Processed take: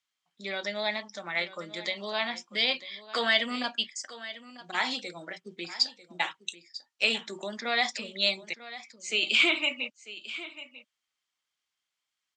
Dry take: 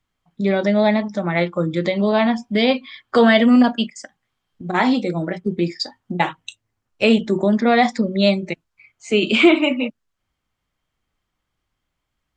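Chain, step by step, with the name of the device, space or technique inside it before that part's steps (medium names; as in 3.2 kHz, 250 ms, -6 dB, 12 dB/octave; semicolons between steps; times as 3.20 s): piezo pickup straight into a mixer (low-pass 6 kHz 12 dB/octave; differentiator); delay 945 ms -15.5 dB; trim +5 dB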